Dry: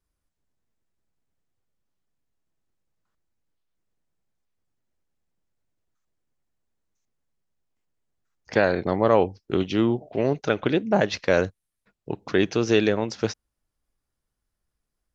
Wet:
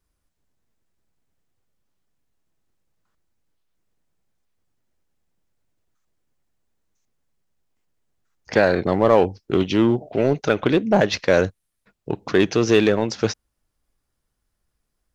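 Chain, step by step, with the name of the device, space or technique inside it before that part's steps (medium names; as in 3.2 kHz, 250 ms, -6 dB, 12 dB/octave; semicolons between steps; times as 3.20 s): parallel distortion (in parallel at -4.5 dB: hard clipper -21 dBFS, distortion -6 dB); on the sum: trim +1.5 dB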